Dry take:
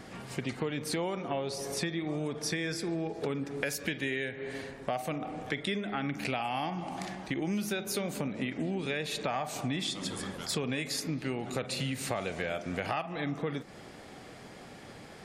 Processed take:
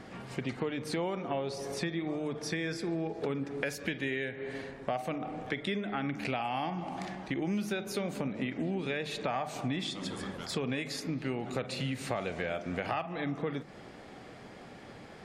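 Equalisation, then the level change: low-pass 3.5 kHz 6 dB/octave; hum notches 50/100/150 Hz; 0.0 dB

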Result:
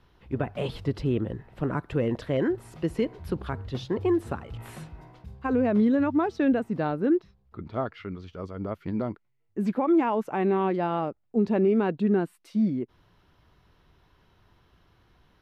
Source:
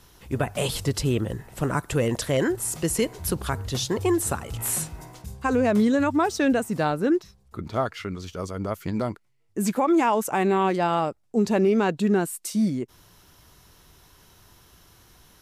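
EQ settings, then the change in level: distance through air 370 m; treble shelf 4.8 kHz +8 dB; dynamic bell 290 Hz, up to +5 dB, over -33 dBFS, Q 0.79; -5.0 dB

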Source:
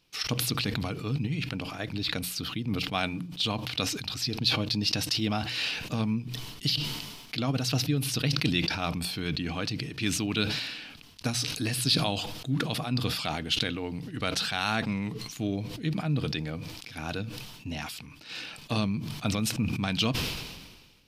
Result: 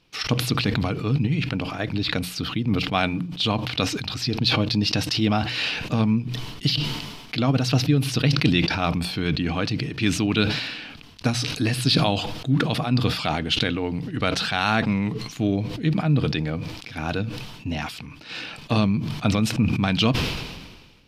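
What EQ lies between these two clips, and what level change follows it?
low-pass 2.9 kHz 6 dB/octave; +8.0 dB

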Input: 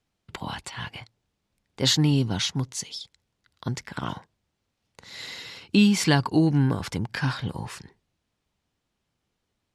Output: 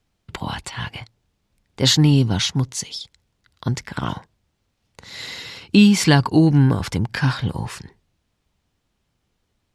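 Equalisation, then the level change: bass shelf 87 Hz +8 dB; +5.0 dB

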